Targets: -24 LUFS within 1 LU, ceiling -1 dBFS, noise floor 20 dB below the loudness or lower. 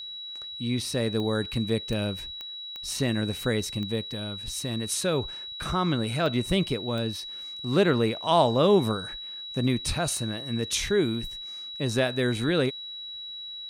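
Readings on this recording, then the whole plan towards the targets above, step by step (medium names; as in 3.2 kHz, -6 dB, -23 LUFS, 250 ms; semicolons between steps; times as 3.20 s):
clicks found 8; steady tone 3.9 kHz; tone level -36 dBFS; loudness -27.5 LUFS; peak level -8.5 dBFS; loudness target -24.0 LUFS
-> de-click; band-stop 3.9 kHz, Q 30; trim +3.5 dB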